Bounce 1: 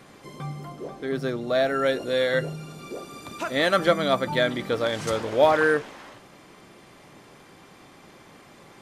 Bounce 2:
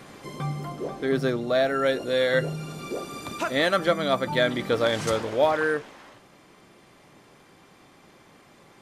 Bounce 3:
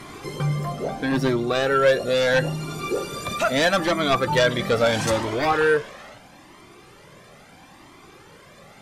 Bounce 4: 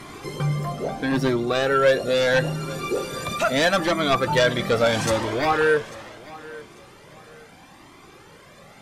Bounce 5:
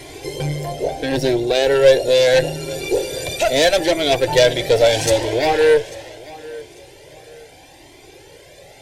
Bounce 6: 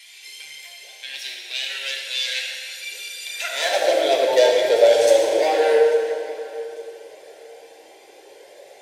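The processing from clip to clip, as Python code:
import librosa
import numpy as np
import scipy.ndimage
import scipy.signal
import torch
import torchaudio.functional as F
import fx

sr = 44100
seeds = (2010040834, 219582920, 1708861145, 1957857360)

y1 = fx.rider(x, sr, range_db=4, speed_s=0.5)
y2 = fx.fold_sine(y1, sr, drive_db=7, ceiling_db=-8.5)
y2 = fx.comb_cascade(y2, sr, direction='rising', hz=0.76)
y3 = fx.echo_feedback(y2, sr, ms=845, feedback_pct=30, wet_db=-19.5)
y4 = fx.cheby_harmonics(y3, sr, harmonics=(2, 6), levels_db=(-12, -30), full_scale_db=-8.5)
y4 = fx.fixed_phaser(y4, sr, hz=500.0, stages=4)
y4 = F.gain(torch.from_numpy(y4), 7.5).numpy()
y5 = fx.rev_plate(y4, sr, seeds[0], rt60_s=2.4, hf_ratio=0.75, predelay_ms=0, drr_db=-1.0)
y5 = fx.filter_sweep_highpass(y5, sr, from_hz=2600.0, to_hz=490.0, start_s=3.25, end_s=3.95, q=1.9)
y5 = F.gain(torch.from_numpy(y5), -8.0).numpy()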